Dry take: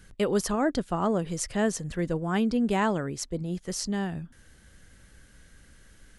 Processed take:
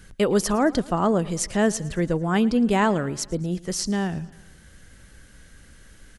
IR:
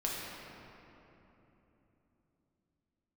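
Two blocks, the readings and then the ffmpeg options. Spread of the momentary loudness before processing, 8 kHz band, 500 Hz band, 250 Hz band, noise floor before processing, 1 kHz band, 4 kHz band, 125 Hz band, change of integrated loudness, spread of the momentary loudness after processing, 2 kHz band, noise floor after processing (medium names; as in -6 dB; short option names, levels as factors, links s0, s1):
8 LU, +5.0 dB, +5.0 dB, +5.0 dB, -57 dBFS, +5.0 dB, +5.0 dB, +5.0 dB, +5.0 dB, 8 LU, +5.0 dB, -50 dBFS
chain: -af "aecho=1:1:112|224|336|448:0.0891|0.0508|0.029|0.0165,volume=1.78"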